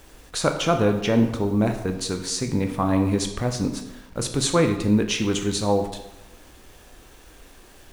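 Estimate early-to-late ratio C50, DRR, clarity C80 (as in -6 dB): 8.5 dB, 5.5 dB, 10.5 dB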